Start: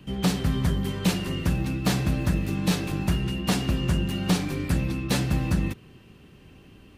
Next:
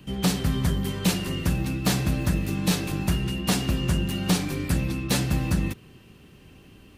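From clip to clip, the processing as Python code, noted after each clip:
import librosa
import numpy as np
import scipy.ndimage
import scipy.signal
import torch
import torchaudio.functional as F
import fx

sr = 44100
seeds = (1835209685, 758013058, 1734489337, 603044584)

y = fx.high_shelf(x, sr, hz=5200.0, db=6.0)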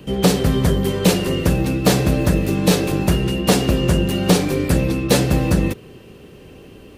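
y = fx.peak_eq(x, sr, hz=480.0, db=11.0, octaves=0.98)
y = y * 10.0 ** (6.0 / 20.0)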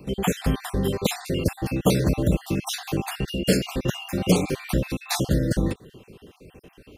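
y = fx.spec_dropout(x, sr, seeds[0], share_pct=46)
y = y * 10.0 ** (-4.0 / 20.0)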